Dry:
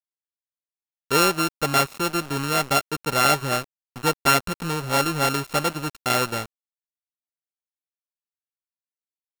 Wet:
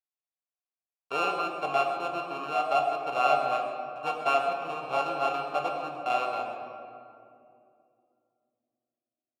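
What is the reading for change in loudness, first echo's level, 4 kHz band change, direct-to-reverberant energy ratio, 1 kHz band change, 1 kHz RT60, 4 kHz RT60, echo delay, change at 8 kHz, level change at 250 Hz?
-6.5 dB, -12.0 dB, -13.5 dB, 1.0 dB, -2.5 dB, 2.3 s, 1.3 s, 0.132 s, under -20 dB, -14.5 dB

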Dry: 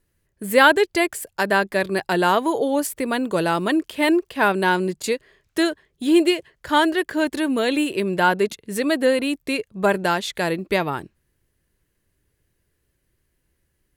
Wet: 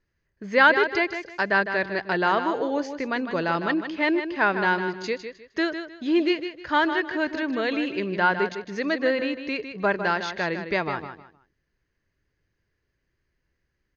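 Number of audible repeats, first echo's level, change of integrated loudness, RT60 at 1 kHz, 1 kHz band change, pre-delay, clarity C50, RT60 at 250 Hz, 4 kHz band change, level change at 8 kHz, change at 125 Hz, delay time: 3, -9.0 dB, -3.5 dB, none, -3.0 dB, none, none, none, -6.0 dB, under -15 dB, -5.5 dB, 0.155 s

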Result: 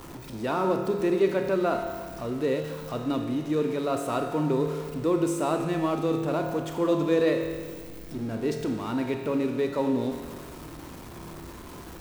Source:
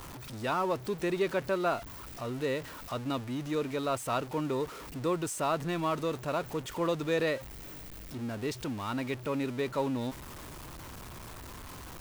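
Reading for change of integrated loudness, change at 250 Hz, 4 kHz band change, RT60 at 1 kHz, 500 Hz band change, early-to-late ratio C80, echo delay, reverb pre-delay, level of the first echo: +5.5 dB, +7.5 dB, 0.0 dB, 1.6 s, +6.5 dB, 6.5 dB, none, 26 ms, none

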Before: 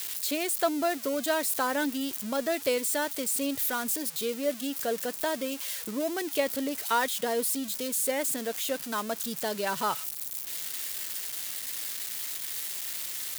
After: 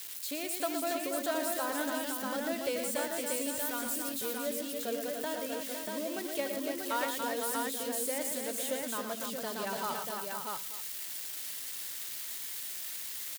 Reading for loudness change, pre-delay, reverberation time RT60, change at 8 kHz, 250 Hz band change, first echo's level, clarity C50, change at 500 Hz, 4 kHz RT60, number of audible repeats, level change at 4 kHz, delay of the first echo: -4.5 dB, none, none, -4.5 dB, -5.0 dB, -15.0 dB, none, -4.5 dB, none, 6, -4.5 dB, 76 ms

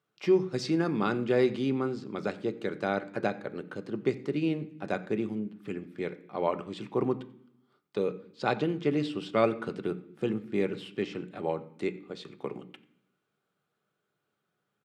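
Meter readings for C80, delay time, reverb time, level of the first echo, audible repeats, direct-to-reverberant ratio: 18.0 dB, 90 ms, 0.70 s, -22.5 dB, 1, 8.5 dB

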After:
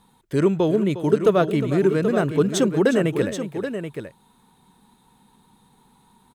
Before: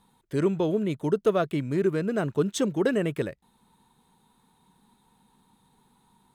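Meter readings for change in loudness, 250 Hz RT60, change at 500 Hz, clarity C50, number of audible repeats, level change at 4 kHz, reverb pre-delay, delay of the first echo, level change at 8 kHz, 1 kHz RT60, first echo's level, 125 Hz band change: +5.5 dB, none, +6.5 dB, none, 2, +6.0 dB, none, 0.357 s, +6.0 dB, none, -13.0 dB, +6.0 dB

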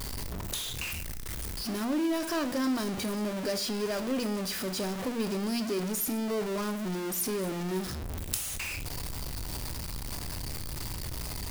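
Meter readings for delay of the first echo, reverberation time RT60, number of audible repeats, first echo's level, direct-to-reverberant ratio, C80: none, 0.55 s, none, none, 11.0 dB, 19.5 dB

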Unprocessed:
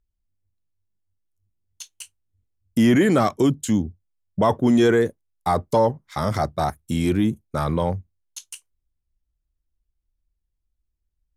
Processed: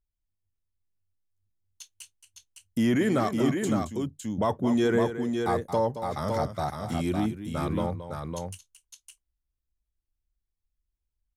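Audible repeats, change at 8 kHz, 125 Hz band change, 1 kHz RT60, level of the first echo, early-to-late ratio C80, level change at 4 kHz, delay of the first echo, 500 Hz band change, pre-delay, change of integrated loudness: 2, -6.0 dB, -6.0 dB, none, -11.0 dB, none, -6.0 dB, 0.223 s, -6.0 dB, none, -6.5 dB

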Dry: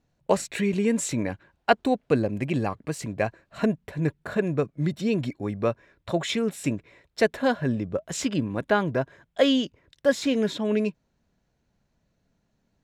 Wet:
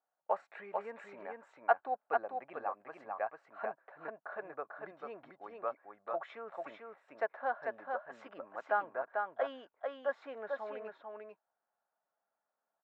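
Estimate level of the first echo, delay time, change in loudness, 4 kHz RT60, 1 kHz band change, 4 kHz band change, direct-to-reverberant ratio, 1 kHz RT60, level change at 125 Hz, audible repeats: -4.0 dB, 0.444 s, -13.0 dB, none, -4.5 dB, -27.5 dB, none, none, under -35 dB, 1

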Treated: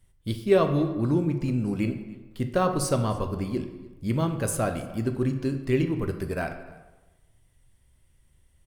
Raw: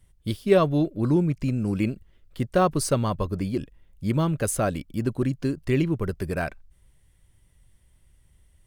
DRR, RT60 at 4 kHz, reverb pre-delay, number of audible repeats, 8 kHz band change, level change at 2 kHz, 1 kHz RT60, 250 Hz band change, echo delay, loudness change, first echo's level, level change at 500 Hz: 6.0 dB, 0.80 s, 5 ms, 1, -2.0 dB, -2.0 dB, 1.2 s, -1.5 dB, 0.295 s, -1.5 dB, -23.0 dB, -1.0 dB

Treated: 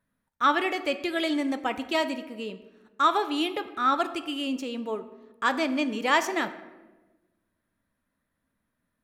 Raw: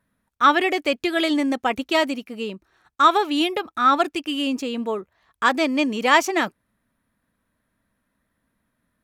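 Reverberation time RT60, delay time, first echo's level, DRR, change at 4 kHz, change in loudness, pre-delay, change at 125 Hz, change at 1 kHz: 1.2 s, none, none, 10.0 dB, -6.0 dB, -6.0 dB, 4 ms, n/a, -6.0 dB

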